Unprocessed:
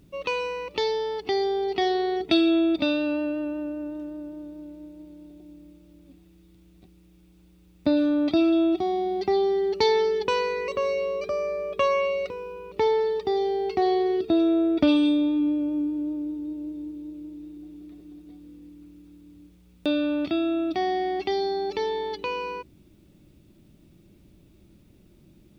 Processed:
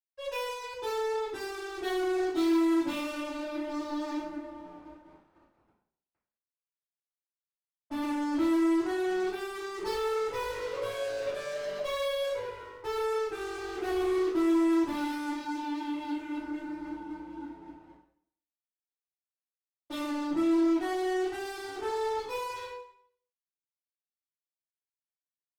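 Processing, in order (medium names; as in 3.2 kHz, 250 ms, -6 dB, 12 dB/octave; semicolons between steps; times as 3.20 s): 3.64–4.14 s: waveshaping leveller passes 5; 17.85–20.07 s: peaking EQ 250 Hz -> 85 Hz -6.5 dB 1.8 oct; flange 0.75 Hz, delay 2.9 ms, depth 8.9 ms, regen +77%; loudest bins only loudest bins 8; fuzz box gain 37 dB, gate -46 dBFS; reverberation RT60 0.60 s, pre-delay 47 ms, DRR -60 dB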